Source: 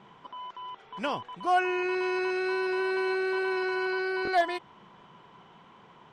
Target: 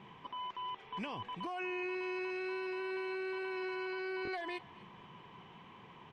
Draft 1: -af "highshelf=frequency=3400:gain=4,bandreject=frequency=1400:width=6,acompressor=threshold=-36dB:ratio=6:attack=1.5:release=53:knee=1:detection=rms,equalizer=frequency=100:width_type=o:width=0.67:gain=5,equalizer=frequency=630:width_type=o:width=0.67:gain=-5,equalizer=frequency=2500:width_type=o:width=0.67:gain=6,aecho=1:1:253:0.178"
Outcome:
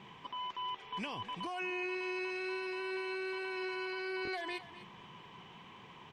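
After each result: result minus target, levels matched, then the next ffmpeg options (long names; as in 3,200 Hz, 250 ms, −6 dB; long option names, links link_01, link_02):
8,000 Hz band +7.0 dB; echo-to-direct +7 dB
-af "highshelf=frequency=3400:gain=-6.5,bandreject=frequency=1400:width=6,acompressor=threshold=-36dB:ratio=6:attack=1.5:release=53:knee=1:detection=rms,equalizer=frequency=100:width_type=o:width=0.67:gain=5,equalizer=frequency=630:width_type=o:width=0.67:gain=-5,equalizer=frequency=2500:width_type=o:width=0.67:gain=6,aecho=1:1:253:0.178"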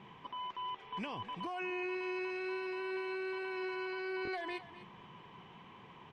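echo-to-direct +7 dB
-af "highshelf=frequency=3400:gain=-6.5,bandreject=frequency=1400:width=6,acompressor=threshold=-36dB:ratio=6:attack=1.5:release=53:knee=1:detection=rms,equalizer=frequency=100:width_type=o:width=0.67:gain=5,equalizer=frequency=630:width_type=o:width=0.67:gain=-5,equalizer=frequency=2500:width_type=o:width=0.67:gain=6,aecho=1:1:253:0.0794"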